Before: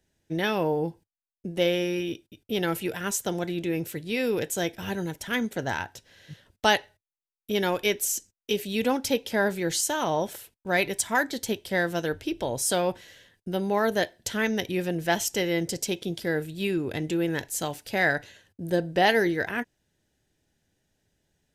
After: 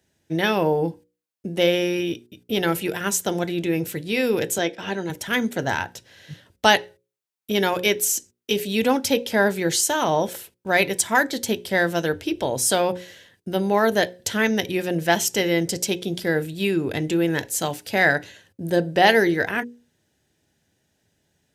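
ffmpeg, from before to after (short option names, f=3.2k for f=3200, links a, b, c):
-filter_complex "[0:a]asettb=1/sr,asplit=3[a][b][c];[a]atrim=end=4.584[d];[b]atrim=start=4.58:end=5.1,asetpts=PTS-STARTPTS,afade=t=in:d=0.004:c=qsin,afade=t=out:st=0.516:d=0.004:c=qsin,highpass=220,lowpass=5.5k[e];[c]atrim=start=5.096[f];[d][e]acrossfade=d=0.004:c1=hsin:c2=qsin[g];[g][f]acrossfade=d=0.004:c1=qsin:c2=hsin,highpass=71,bandreject=f=60:t=h:w=6,bandreject=f=120:t=h:w=6,bandreject=f=180:t=h:w=6,bandreject=f=240:t=h:w=6,bandreject=f=300:t=h:w=6,bandreject=f=360:t=h:w=6,bandreject=f=420:t=h:w=6,bandreject=f=480:t=h:w=6,bandreject=f=540:t=h:w=6,volume=5.5dB"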